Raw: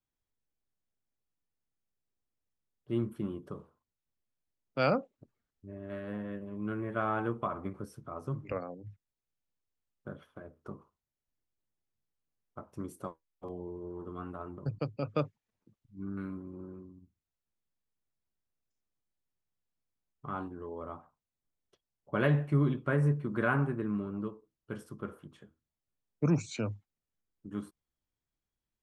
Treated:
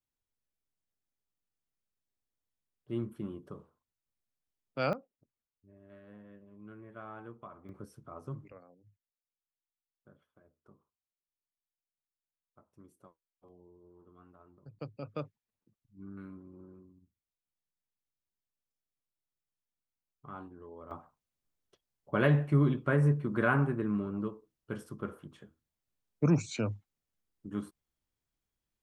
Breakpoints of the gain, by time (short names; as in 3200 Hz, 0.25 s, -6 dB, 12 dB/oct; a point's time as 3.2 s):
-3.5 dB
from 4.93 s -14.5 dB
from 7.69 s -5 dB
from 8.48 s -17.5 dB
from 14.79 s -7.5 dB
from 20.91 s +1.5 dB